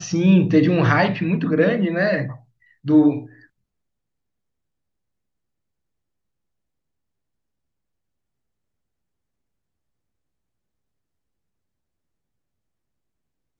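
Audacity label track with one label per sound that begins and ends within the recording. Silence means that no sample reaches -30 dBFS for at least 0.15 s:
2.860000	3.260000	sound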